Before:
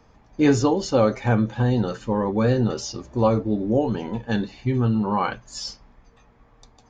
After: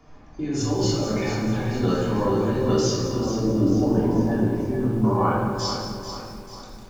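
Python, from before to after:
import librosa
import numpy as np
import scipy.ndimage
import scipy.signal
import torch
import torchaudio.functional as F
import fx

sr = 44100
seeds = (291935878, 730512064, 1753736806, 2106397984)

y = fx.lowpass(x, sr, hz=1200.0, slope=12, at=(3.12, 5.58), fade=0.02)
y = fx.over_compress(y, sr, threshold_db=-25.0, ratio=-1.0)
y = fx.echo_feedback(y, sr, ms=441, feedback_pct=47, wet_db=-9)
y = fx.room_shoebox(y, sr, seeds[0], volume_m3=760.0, walls='mixed', distance_m=3.2)
y = fx.echo_crushed(y, sr, ms=210, feedback_pct=35, bits=6, wet_db=-11.5)
y = y * librosa.db_to_amplitude(-6.0)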